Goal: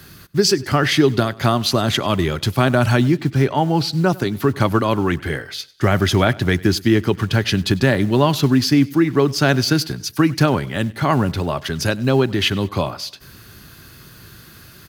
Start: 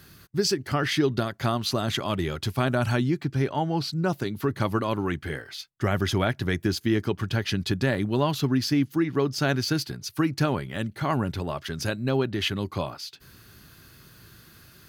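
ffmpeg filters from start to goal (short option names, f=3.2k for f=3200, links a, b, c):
-filter_complex "[0:a]aecho=1:1:98|196|294:0.0794|0.0334|0.014,acrossover=split=200[a][b];[a]acrusher=bits=6:mode=log:mix=0:aa=0.000001[c];[c][b]amix=inputs=2:normalize=0,volume=8.5dB"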